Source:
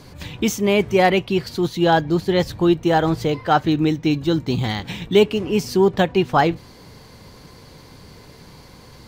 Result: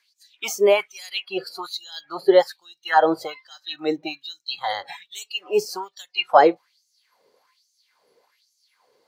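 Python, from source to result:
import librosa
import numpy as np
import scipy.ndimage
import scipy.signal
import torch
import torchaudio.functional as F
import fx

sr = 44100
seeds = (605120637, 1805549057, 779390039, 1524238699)

y = fx.noise_reduce_blind(x, sr, reduce_db=19)
y = fx.filter_lfo_highpass(y, sr, shape='sine', hz=1.2, low_hz=430.0, high_hz=6500.0, q=4.0)
y = y * 10.0 ** (-2.0 / 20.0)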